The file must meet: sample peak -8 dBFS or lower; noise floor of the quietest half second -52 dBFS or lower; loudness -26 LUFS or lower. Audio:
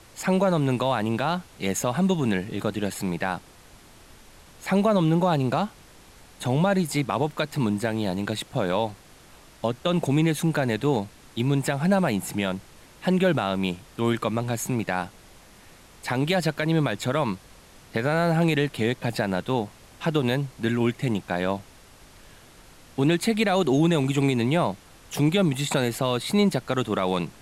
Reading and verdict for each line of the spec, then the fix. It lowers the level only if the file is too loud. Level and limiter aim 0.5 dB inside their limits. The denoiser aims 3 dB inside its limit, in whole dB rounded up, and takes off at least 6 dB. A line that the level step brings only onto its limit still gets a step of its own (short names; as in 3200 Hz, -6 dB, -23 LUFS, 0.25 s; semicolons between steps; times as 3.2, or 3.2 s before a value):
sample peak -11.0 dBFS: OK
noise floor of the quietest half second -50 dBFS: fail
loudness -25.0 LUFS: fail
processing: denoiser 6 dB, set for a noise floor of -50 dBFS; gain -1.5 dB